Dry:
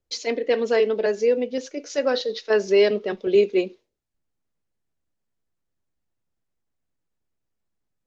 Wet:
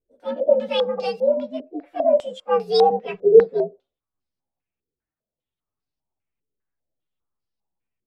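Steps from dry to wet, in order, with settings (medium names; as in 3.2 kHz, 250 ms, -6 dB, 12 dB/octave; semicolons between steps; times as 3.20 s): frequency axis rescaled in octaves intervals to 125%; step-sequenced low-pass 5 Hz 420–4900 Hz; trim -1 dB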